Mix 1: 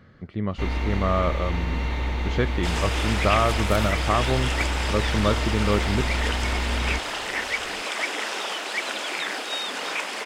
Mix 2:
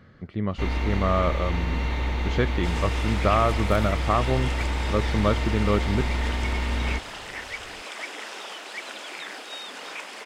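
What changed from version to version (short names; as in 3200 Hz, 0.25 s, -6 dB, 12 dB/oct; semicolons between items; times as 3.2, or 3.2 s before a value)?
second sound -8.0 dB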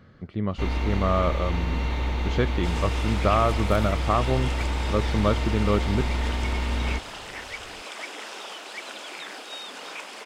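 master: add bell 1900 Hz -3.5 dB 0.48 oct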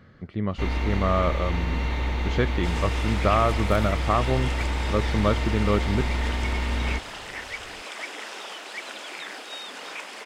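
master: add bell 1900 Hz +3.5 dB 0.48 oct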